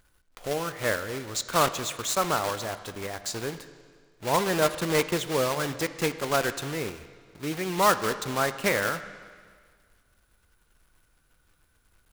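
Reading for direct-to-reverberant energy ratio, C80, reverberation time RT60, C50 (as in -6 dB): 11.0 dB, 13.5 dB, 1.8 s, 12.5 dB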